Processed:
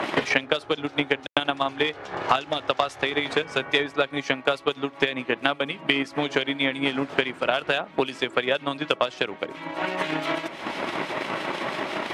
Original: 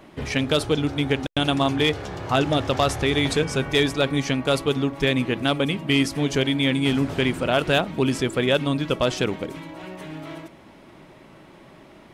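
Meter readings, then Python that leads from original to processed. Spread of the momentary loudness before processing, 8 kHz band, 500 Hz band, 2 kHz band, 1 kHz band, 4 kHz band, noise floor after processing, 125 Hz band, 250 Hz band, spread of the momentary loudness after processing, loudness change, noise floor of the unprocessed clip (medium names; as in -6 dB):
11 LU, -9.5 dB, -2.5 dB, +2.0 dB, +1.5 dB, -2.0 dB, -45 dBFS, -13.5 dB, -7.0 dB, 6 LU, -3.5 dB, -48 dBFS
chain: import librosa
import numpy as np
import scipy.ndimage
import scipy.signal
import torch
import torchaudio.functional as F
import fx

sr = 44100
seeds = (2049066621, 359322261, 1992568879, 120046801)

y = fx.transient(x, sr, attack_db=12, sustain_db=-3)
y = fx.harmonic_tremolo(y, sr, hz=6.0, depth_pct=50, crossover_hz=2500.0)
y = fx.bandpass_q(y, sr, hz=1400.0, q=0.53)
y = fx.band_squash(y, sr, depth_pct=100)
y = F.gain(torch.from_numpy(y), -2.0).numpy()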